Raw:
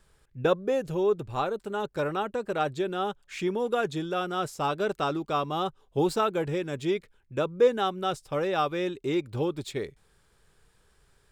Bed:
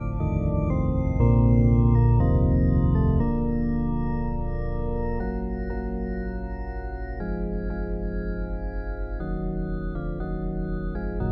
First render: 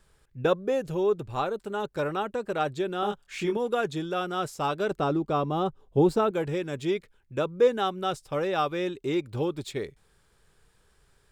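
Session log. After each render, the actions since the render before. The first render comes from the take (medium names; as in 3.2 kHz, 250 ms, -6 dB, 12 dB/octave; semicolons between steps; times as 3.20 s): 3.00–3.57 s: doubling 24 ms -3.5 dB; 4.91–6.31 s: tilt shelf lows +6 dB, about 910 Hz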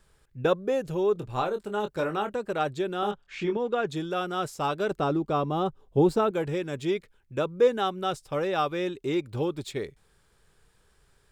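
1.13–2.37 s: doubling 24 ms -8 dB; 3.11–3.88 s: distance through air 120 m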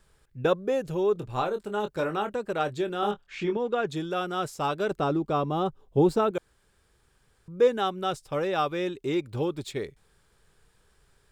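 2.57–3.21 s: doubling 24 ms -11.5 dB; 6.38–7.48 s: room tone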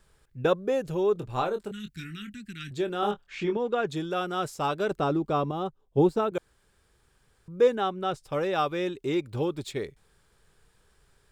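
1.71–2.71 s: elliptic band-stop 240–1900 Hz, stop band 70 dB; 5.51–6.32 s: upward expansion, over -38 dBFS; 7.75–8.24 s: treble shelf 4.3 kHz -9.5 dB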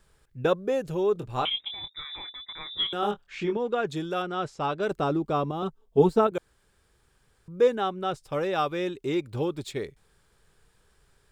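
1.45–2.93 s: frequency inversion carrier 3.7 kHz; 4.22–4.83 s: distance through air 110 m; 5.62–6.27 s: comb 4.5 ms, depth 95%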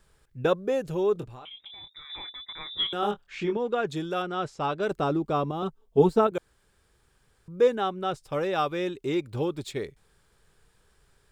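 1.24–2.10 s: compression 12:1, threshold -41 dBFS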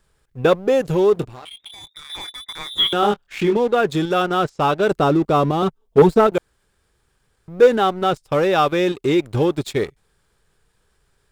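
in parallel at -1 dB: level held to a coarse grid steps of 17 dB; on the sum: waveshaping leveller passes 2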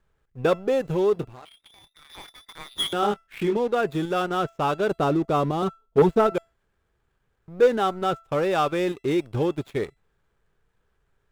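median filter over 9 samples; feedback comb 670 Hz, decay 0.31 s, mix 50%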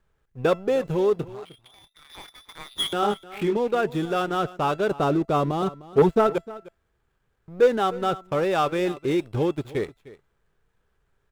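delay 305 ms -18.5 dB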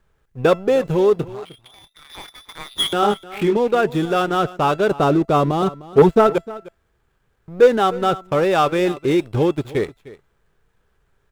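trim +6 dB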